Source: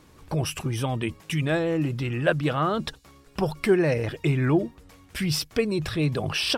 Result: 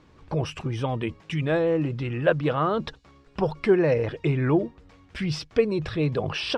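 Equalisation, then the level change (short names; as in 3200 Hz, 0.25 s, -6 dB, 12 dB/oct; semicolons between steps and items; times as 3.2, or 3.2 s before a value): dynamic EQ 480 Hz, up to +6 dB, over -40 dBFS, Q 3; dynamic EQ 990 Hz, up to +4 dB, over -40 dBFS, Q 3; air absorption 130 m; -1.0 dB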